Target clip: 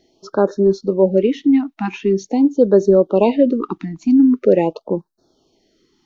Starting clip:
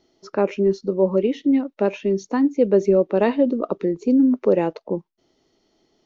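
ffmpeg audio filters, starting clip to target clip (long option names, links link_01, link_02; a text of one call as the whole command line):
ffmpeg -i in.wav -af "afftfilt=real='re*(1-between(b*sr/1024,450*pow(2600/450,0.5+0.5*sin(2*PI*0.44*pts/sr))/1.41,450*pow(2600/450,0.5+0.5*sin(2*PI*0.44*pts/sr))*1.41))':imag='im*(1-between(b*sr/1024,450*pow(2600/450,0.5+0.5*sin(2*PI*0.44*pts/sr))/1.41,450*pow(2600/450,0.5+0.5*sin(2*PI*0.44*pts/sr))*1.41))':win_size=1024:overlap=0.75,volume=4.5dB" out.wav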